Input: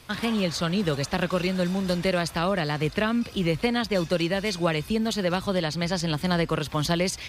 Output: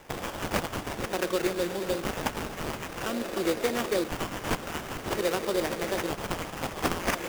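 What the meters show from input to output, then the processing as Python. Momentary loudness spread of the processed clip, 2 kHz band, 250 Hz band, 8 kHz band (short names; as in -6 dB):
7 LU, -3.5 dB, -7.5 dB, -1.0 dB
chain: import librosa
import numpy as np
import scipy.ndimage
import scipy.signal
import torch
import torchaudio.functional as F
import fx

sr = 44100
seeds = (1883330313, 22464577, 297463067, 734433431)

y = fx.echo_swell(x, sr, ms=119, loudest=5, wet_db=-16.5)
y = fx.filter_lfo_highpass(y, sr, shape='square', hz=0.49, low_hz=350.0, high_hz=3900.0, q=2.4)
y = fx.high_shelf(y, sr, hz=3000.0, db=8.5)
y = fx.sample_hold(y, sr, seeds[0], rate_hz=4200.0, jitter_pct=20)
y = F.gain(torch.from_numpy(y), -6.5).numpy()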